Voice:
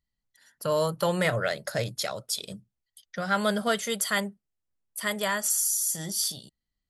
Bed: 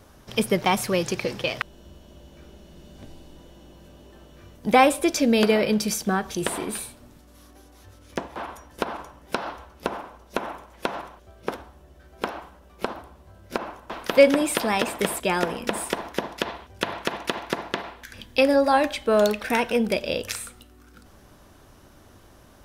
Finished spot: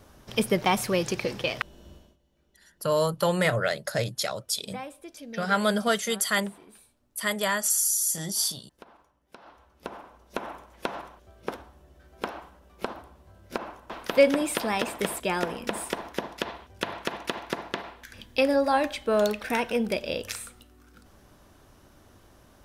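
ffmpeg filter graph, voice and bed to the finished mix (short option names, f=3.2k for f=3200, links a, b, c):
-filter_complex "[0:a]adelay=2200,volume=1.5dB[a];[1:a]volume=16.5dB,afade=t=out:st=1.93:d=0.24:silence=0.0944061,afade=t=in:st=9.36:d=1.2:silence=0.11885[b];[a][b]amix=inputs=2:normalize=0"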